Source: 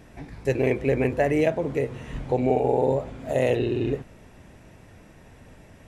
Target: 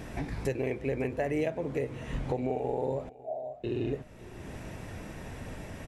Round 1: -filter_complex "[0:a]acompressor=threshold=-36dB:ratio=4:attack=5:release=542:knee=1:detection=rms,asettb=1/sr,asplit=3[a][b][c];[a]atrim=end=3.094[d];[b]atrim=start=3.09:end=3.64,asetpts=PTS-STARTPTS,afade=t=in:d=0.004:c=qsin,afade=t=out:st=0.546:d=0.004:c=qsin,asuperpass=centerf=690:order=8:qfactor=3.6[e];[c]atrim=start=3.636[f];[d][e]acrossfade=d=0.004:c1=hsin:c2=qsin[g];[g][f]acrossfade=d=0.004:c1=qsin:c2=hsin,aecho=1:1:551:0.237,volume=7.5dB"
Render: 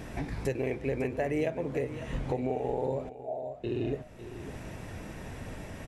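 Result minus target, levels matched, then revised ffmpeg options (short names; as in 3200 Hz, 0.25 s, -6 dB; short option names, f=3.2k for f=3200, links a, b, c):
echo-to-direct +6.5 dB
-filter_complex "[0:a]acompressor=threshold=-36dB:ratio=4:attack=5:release=542:knee=1:detection=rms,asettb=1/sr,asplit=3[a][b][c];[a]atrim=end=3.094[d];[b]atrim=start=3.09:end=3.64,asetpts=PTS-STARTPTS,afade=t=in:d=0.004:c=qsin,afade=t=out:st=0.546:d=0.004:c=qsin,asuperpass=centerf=690:order=8:qfactor=3.6[e];[c]atrim=start=3.636[f];[d][e]acrossfade=d=0.004:c1=hsin:c2=qsin[g];[g][f]acrossfade=d=0.004:c1=qsin:c2=hsin,aecho=1:1:551:0.112,volume=7.5dB"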